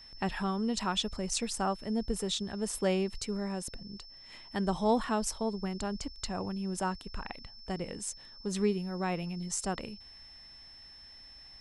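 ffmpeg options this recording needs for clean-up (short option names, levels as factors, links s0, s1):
-af "bandreject=f=5300:w=30"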